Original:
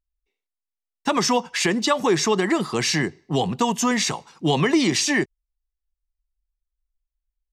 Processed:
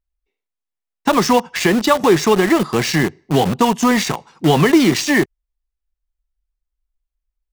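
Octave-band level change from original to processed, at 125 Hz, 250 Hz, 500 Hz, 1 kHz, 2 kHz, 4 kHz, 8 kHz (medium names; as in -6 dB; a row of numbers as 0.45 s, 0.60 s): +7.0 dB, +7.0 dB, +7.0 dB, +6.5 dB, +5.0 dB, +2.0 dB, +0.5 dB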